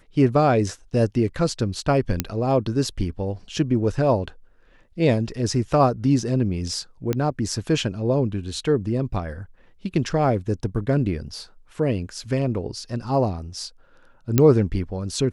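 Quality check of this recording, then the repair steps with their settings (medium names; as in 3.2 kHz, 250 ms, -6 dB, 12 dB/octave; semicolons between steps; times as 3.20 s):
2.20 s: pop -4 dBFS
7.13 s: pop -11 dBFS
14.38 s: pop -3 dBFS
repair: de-click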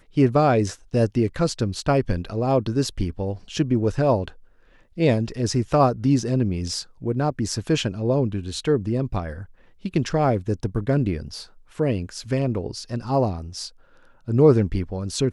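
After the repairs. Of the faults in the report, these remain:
nothing left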